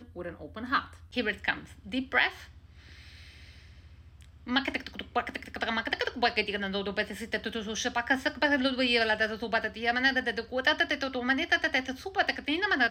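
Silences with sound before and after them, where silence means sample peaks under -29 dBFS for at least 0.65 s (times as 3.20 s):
2.29–4.49 s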